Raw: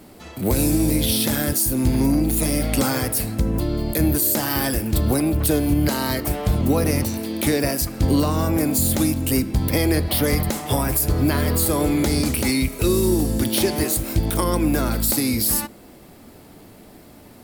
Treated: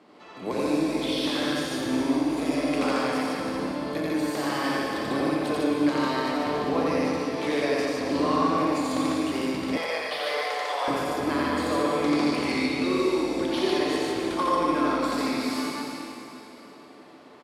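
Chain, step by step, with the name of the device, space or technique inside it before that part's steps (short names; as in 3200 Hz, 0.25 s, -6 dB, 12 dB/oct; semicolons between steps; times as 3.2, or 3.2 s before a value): station announcement (BPF 310–4100 Hz; bell 1100 Hz +9 dB 0.2 oct; loudspeakers at several distances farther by 15 m -11 dB, 30 m -1 dB, 51 m -1 dB; reverb RT60 3.0 s, pre-delay 0.107 s, DRR 2 dB); 9.77–10.88 steep high-pass 490 Hz 36 dB/oct; high shelf 8300 Hz -4.5 dB; shoebox room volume 1800 m³, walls mixed, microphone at 0.35 m; gain -7 dB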